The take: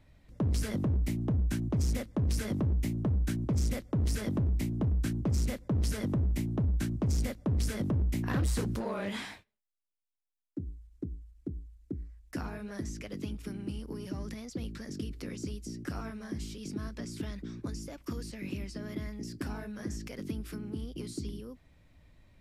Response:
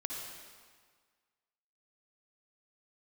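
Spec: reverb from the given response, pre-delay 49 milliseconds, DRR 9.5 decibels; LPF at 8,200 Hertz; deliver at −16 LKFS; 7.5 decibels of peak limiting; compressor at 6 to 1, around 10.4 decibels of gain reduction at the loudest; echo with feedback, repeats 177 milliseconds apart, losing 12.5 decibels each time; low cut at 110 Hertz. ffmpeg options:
-filter_complex "[0:a]highpass=110,lowpass=8200,acompressor=threshold=-38dB:ratio=6,alimiter=level_in=9.5dB:limit=-24dB:level=0:latency=1,volume=-9.5dB,aecho=1:1:177|354|531:0.237|0.0569|0.0137,asplit=2[link_01][link_02];[1:a]atrim=start_sample=2205,adelay=49[link_03];[link_02][link_03]afir=irnorm=-1:irlink=0,volume=-10.5dB[link_04];[link_01][link_04]amix=inputs=2:normalize=0,volume=28dB"

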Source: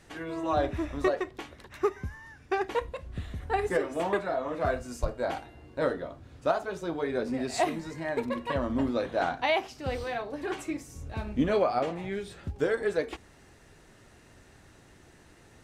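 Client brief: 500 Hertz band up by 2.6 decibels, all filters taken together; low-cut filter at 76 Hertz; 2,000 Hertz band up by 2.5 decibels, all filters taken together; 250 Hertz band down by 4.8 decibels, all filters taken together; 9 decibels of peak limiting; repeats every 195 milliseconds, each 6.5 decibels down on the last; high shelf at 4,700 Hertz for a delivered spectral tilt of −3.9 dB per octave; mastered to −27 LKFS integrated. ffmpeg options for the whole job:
ffmpeg -i in.wav -af "highpass=76,equalizer=frequency=250:width_type=o:gain=-9,equalizer=frequency=500:width_type=o:gain=5.5,equalizer=frequency=2000:width_type=o:gain=4,highshelf=frequency=4700:gain=-6.5,alimiter=limit=-19dB:level=0:latency=1,aecho=1:1:195|390|585|780|975|1170:0.473|0.222|0.105|0.0491|0.0231|0.0109,volume=4dB" out.wav

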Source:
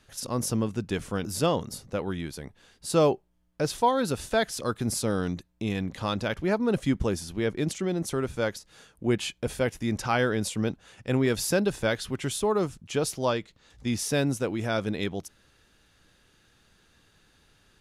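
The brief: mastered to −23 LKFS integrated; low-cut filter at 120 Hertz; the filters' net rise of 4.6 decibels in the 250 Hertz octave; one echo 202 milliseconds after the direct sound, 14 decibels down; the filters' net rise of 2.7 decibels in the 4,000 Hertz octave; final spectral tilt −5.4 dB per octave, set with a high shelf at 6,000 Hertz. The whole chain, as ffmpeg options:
ffmpeg -i in.wav -af "highpass=120,equalizer=frequency=250:width_type=o:gain=6,equalizer=frequency=4000:width_type=o:gain=6,highshelf=frequency=6000:gain=-7.5,aecho=1:1:202:0.2,volume=3dB" out.wav

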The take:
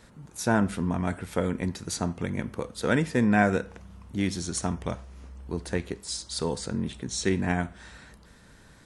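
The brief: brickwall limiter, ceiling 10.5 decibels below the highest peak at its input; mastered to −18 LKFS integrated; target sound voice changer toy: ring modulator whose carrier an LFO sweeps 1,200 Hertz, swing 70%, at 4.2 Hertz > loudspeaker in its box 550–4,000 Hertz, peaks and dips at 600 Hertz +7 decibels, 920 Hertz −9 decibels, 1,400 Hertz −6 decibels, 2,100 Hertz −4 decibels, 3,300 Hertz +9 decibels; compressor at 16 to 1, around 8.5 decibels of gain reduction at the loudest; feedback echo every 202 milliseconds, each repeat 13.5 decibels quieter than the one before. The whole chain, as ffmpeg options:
ffmpeg -i in.wav -af "acompressor=threshold=-26dB:ratio=16,alimiter=level_in=2dB:limit=-24dB:level=0:latency=1,volume=-2dB,aecho=1:1:202|404:0.211|0.0444,aeval=exprs='val(0)*sin(2*PI*1200*n/s+1200*0.7/4.2*sin(2*PI*4.2*n/s))':channel_layout=same,highpass=550,equalizer=frequency=600:width_type=q:width=4:gain=7,equalizer=frequency=920:width_type=q:width=4:gain=-9,equalizer=frequency=1400:width_type=q:width=4:gain=-6,equalizer=frequency=2100:width_type=q:width=4:gain=-4,equalizer=frequency=3300:width_type=q:width=4:gain=9,lowpass=frequency=4000:width=0.5412,lowpass=frequency=4000:width=1.3066,volume=24dB" out.wav

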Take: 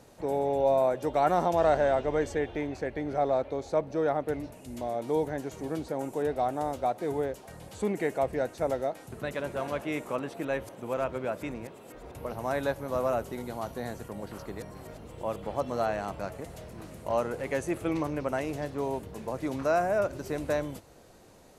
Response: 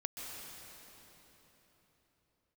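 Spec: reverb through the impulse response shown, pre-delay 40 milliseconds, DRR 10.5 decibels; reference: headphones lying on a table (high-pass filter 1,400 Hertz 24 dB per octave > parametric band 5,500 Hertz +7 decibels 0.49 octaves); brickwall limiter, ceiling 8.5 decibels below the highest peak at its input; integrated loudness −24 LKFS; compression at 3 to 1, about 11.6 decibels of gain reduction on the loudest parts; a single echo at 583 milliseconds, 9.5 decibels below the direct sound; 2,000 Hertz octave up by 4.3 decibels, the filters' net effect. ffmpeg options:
-filter_complex "[0:a]equalizer=frequency=2000:width_type=o:gain=6.5,acompressor=threshold=-36dB:ratio=3,alimiter=level_in=6.5dB:limit=-24dB:level=0:latency=1,volume=-6.5dB,aecho=1:1:583:0.335,asplit=2[link_01][link_02];[1:a]atrim=start_sample=2205,adelay=40[link_03];[link_02][link_03]afir=irnorm=-1:irlink=0,volume=-11dB[link_04];[link_01][link_04]amix=inputs=2:normalize=0,highpass=frequency=1400:width=0.5412,highpass=frequency=1400:width=1.3066,equalizer=frequency=5500:width_type=o:width=0.49:gain=7,volume=25.5dB"

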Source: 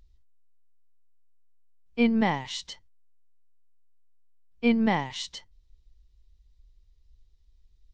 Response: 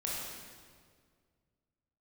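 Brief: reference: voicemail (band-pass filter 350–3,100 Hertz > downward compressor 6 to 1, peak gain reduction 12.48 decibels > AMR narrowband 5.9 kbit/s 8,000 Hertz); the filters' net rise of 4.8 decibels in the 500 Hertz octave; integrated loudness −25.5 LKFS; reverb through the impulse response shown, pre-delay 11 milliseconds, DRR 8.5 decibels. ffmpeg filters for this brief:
-filter_complex "[0:a]equalizer=frequency=500:width_type=o:gain=6.5,asplit=2[link_01][link_02];[1:a]atrim=start_sample=2205,adelay=11[link_03];[link_02][link_03]afir=irnorm=-1:irlink=0,volume=-12.5dB[link_04];[link_01][link_04]amix=inputs=2:normalize=0,highpass=350,lowpass=3100,acompressor=threshold=-31dB:ratio=6,volume=13dB" -ar 8000 -c:a libopencore_amrnb -b:a 5900

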